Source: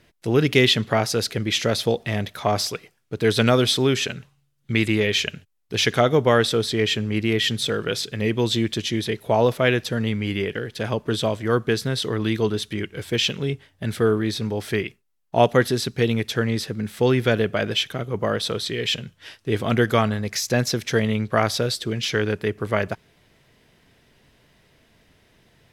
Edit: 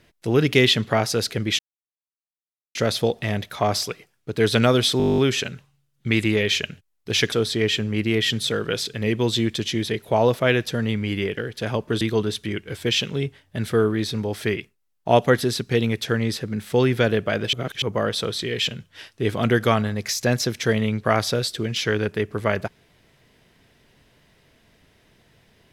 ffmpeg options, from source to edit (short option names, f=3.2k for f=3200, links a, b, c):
-filter_complex "[0:a]asplit=16[a][b][c][d][e][f][g][h][i][j][k][l][m][n][o][p];[a]atrim=end=1.59,asetpts=PTS-STARTPTS,afade=t=out:st=1.586:d=0.004:c=hsin,apad=pad_dur=1.16[q];[b]atrim=start=1.59:end=3.842,asetpts=PTS-STARTPTS,afade=t=in:d=0.004:c=hsin[r];[c]atrim=start=3.818:end=3.842[s];[d]atrim=start=3.818:end=3.842[t];[e]atrim=start=3.818:end=3.842[u];[f]atrim=start=3.818:end=3.842[v];[g]atrim=start=3.818:end=3.842[w];[h]atrim=start=3.818:end=3.842[x];[i]atrim=start=3.818:end=3.842[y];[j]atrim=start=3.818:end=3.842[z];[k]atrim=start=3.818:end=3.842[aa];[l]atrim=start=3.818:end=5.962[ab];[m]atrim=start=6.498:end=11.192[ac];[n]atrim=start=12.278:end=17.802[ad];[o]atrim=start=17.798:end=18.092,asetpts=PTS-STARTPTS,areverse[ae];[p]atrim=start=18.088[af];[q][r]concat=n=2:v=0:a=1[ag];[ag][s]acrossfade=d=0.004:c1=hsin:c2=hsin[ah];[ah][t]acrossfade=d=0.004:c1=hsin:c2=hsin[ai];[ai][u]acrossfade=d=0.004:c1=hsin:c2=hsin[aj];[aj][v]acrossfade=d=0.004:c1=hsin:c2=hsin[ak];[ak][w]acrossfade=d=0.004:c1=hsin:c2=hsin[al];[al][x]acrossfade=d=0.004:c1=hsin:c2=hsin[am];[am][y]acrossfade=d=0.004:c1=hsin:c2=hsin[an];[an][z]acrossfade=d=0.004:c1=hsin:c2=hsin[ao];[ao][aa]acrossfade=d=0.004:c1=hsin:c2=hsin[ap];[ap][ab]acrossfade=d=0.004:c1=hsin:c2=hsin[aq];[aq][ac]acrossfade=d=0.004:c1=hsin:c2=hsin[ar];[ar][ad]acrossfade=d=0.004:c1=hsin:c2=hsin[as];[as][ae]acrossfade=d=0.004:c1=hsin:c2=hsin[at];[at][af]acrossfade=d=0.004:c1=hsin:c2=hsin"